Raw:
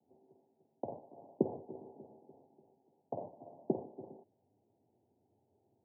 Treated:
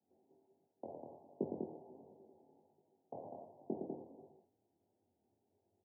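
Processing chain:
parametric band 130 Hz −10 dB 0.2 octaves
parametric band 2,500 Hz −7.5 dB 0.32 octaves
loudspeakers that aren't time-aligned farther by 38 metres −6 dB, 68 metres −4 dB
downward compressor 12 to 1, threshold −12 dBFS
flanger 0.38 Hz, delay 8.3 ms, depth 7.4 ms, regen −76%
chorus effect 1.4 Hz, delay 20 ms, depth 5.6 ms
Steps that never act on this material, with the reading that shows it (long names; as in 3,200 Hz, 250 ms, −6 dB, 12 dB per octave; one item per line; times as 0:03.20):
parametric band 2,500 Hz: nothing at its input above 960 Hz
downward compressor, threshold −12 dBFS: peak of its input −15.0 dBFS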